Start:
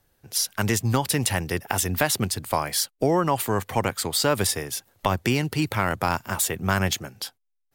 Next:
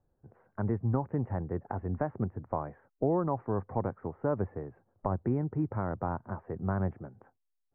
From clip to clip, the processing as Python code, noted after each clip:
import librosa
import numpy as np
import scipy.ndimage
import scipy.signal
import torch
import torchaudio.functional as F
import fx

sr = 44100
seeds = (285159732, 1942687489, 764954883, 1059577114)

y = scipy.ndimage.gaussian_filter1d(x, 8.0, mode='constant')
y = y * 10.0 ** (-5.5 / 20.0)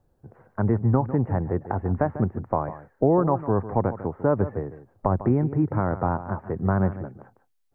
y = x + 10.0 ** (-13.5 / 20.0) * np.pad(x, (int(150 * sr / 1000.0), 0))[:len(x)]
y = y * 10.0 ** (8.5 / 20.0)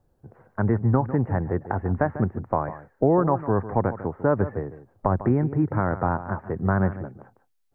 y = fx.dynamic_eq(x, sr, hz=1700.0, q=1.9, threshold_db=-46.0, ratio=4.0, max_db=6)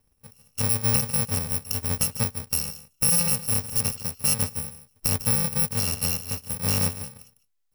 y = fx.bit_reversed(x, sr, seeds[0], block=128)
y = y * 10.0 ** (-2.0 / 20.0)